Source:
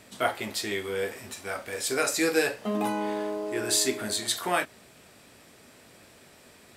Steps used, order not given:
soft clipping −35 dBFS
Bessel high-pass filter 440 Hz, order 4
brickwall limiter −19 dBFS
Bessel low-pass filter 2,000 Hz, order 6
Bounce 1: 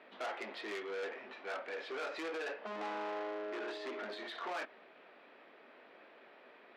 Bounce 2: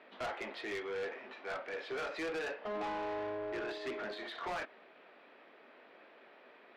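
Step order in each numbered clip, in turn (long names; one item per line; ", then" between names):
brickwall limiter, then Bessel low-pass filter, then soft clipping, then Bessel high-pass filter
Bessel high-pass filter, then brickwall limiter, then Bessel low-pass filter, then soft clipping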